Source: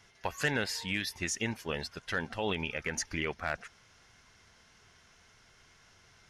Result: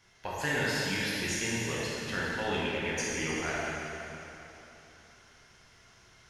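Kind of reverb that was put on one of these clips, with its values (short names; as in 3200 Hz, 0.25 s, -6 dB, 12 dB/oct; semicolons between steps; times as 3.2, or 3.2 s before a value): plate-style reverb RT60 3.3 s, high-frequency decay 0.9×, DRR -7 dB; gain -5 dB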